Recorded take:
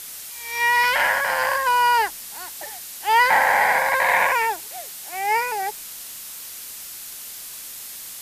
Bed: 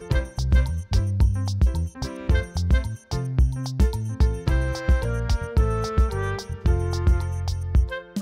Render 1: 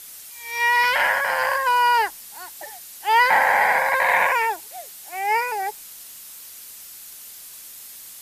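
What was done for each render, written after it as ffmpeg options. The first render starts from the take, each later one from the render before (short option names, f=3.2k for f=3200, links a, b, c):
-af "afftdn=nr=6:nf=-37"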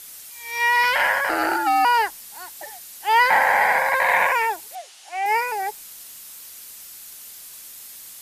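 -filter_complex "[0:a]asettb=1/sr,asplit=3[a][b][c];[a]atrim=end=1.294[d];[b]atrim=start=1.29:end=1.85,asetpts=PTS-STARTPTS,afade=t=in:d=0.004:c=qsin,afade=t=out:st=0.556:d=0.004:c=qsin,afreqshift=-200[e];[c]atrim=start=1.846[f];[d][e]acrossfade=d=0.004:c1=hsin:c2=qsin[g];[g][f]acrossfade=d=0.004:c1=qsin:c2=hsin,asettb=1/sr,asplit=3[h][i][j];[h]atrim=end=4.754[k];[i]atrim=start=4.75:end=5.26,asetpts=PTS-STARTPTS,afade=t=in:d=0.004:c=qsin,afade=t=out:st=0.506:d=0.004:c=qsin,highpass=410,equalizer=f=460:t=q:w=4:g=-4,equalizer=f=770:t=q:w=4:g=4,equalizer=f=2.9k:t=q:w=4:g=5,equalizer=f=8k:t=q:w=4:g=-6,lowpass=f=8.7k:w=0.5412,lowpass=f=8.7k:w=1.3066[l];[j]atrim=start=5.256[m];[k][l]acrossfade=d=0.004:c1=hsin:c2=qsin[n];[n][m]acrossfade=d=0.004:c1=qsin:c2=hsin"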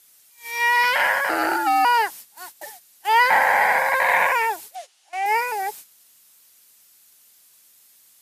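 -af "agate=range=-14dB:threshold=-37dB:ratio=16:detection=peak,highpass=92"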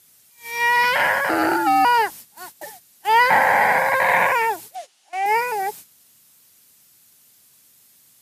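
-af "equalizer=f=120:w=0.41:g=12.5"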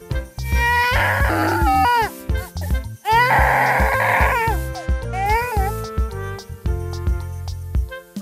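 -filter_complex "[1:a]volume=-1.5dB[a];[0:a][a]amix=inputs=2:normalize=0"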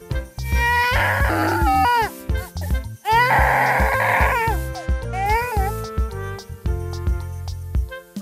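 -af "volume=-1dB"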